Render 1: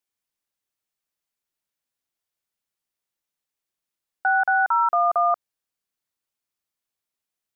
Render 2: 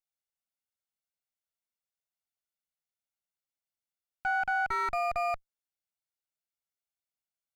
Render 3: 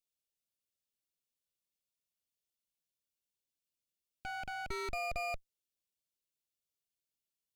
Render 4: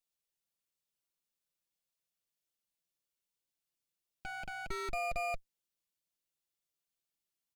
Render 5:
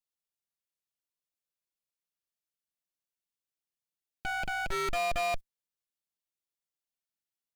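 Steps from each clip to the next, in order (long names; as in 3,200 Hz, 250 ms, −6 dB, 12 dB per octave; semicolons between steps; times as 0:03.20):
lower of the sound and its delayed copy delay 1.4 ms; level −9 dB
flat-topped bell 1,200 Hz −15.5 dB; level +1.5 dB
comb filter 5.9 ms, depth 38%
leveller curve on the samples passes 3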